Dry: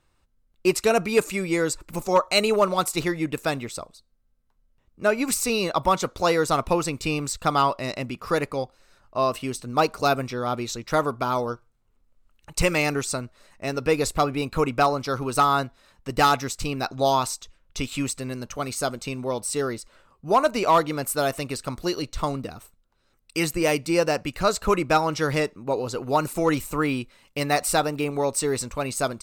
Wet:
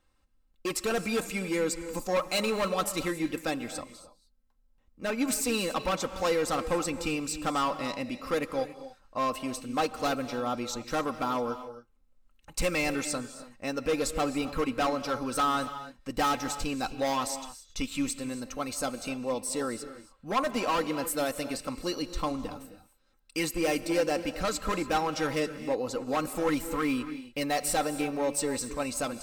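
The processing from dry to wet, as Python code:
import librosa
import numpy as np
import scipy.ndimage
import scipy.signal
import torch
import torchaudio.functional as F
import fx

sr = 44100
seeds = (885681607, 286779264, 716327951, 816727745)

y = np.clip(x, -10.0 ** (-19.0 / 20.0), 10.0 ** (-19.0 / 20.0))
y = y + 0.56 * np.pad(y, (int(3.8 * sr / 1000.0), 0))[:len(y)]
y = fx.rev_gated(y, sr, seeds[0], gate_ms=310, shape='rising', drr_db=11.5)
y = y * librosa.db_to_amplitude(-5.5)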